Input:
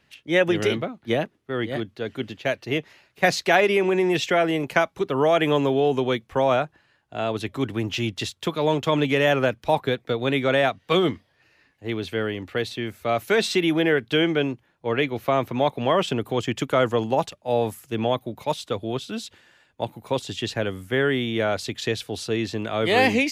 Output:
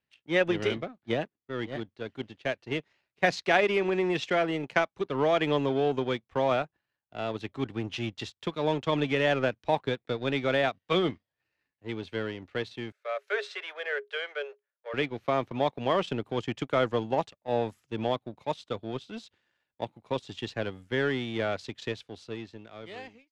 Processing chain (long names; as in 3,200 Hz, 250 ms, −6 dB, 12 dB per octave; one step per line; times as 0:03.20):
fade-out on the ending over 1.70 s
power curve on the samples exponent 1.4
low-pass filter 5,600 Hz 12 dB per octave
in parallel at −5 dB: soft clipping −20.5 dBFS, distortion −11 dB
0:12.92–0:14.94: on the sum: Chebyshev high-pass with heavy ripple 400 Hz, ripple 9 dB
level −4 dB